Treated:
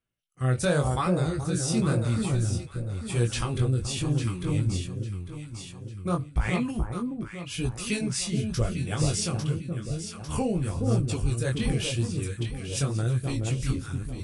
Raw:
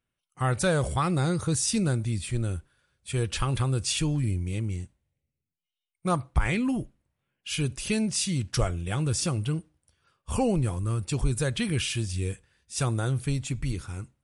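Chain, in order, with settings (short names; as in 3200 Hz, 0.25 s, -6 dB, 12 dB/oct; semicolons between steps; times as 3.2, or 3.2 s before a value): chorus 0.91 Hz, delay 16.5 ms, depth 7.2 ms; echo with dull and thin repeats by turns 0.425 s, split 1100 Hz, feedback 63%, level -3.5 dB; rotary speaker horn 0.85 Hz, later 5.5 Hz, at 10.15; gain +3.5 dB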